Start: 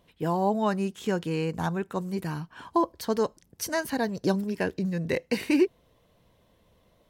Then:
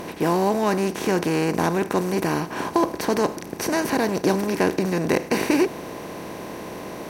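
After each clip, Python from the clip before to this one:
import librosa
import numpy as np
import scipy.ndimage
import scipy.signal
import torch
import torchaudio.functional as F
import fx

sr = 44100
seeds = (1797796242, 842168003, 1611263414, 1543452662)

y = fx.bin_compress(x, sr, power=0.4)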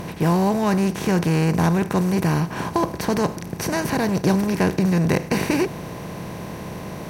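y = fx.low_shelf_res(x, sr, hz=210.0, db=8.5, q=1.5)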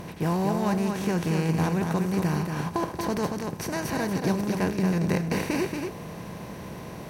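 y = x + 10.0 ** (-5.0 / 20.0) * np.pad(x, (int(231 * sr / 1000.0), 0))[:len(x)]
y = y * 10.0 ** (-7.0 / 20.0)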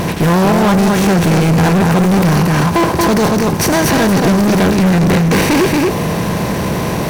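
y = fx.leveller(x, sr, passes=5)
y = y * 10.0 ** (4.0 / 20.0)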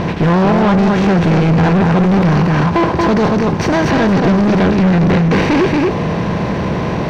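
y = fx.air_absorb(x, sr, metres=190.0)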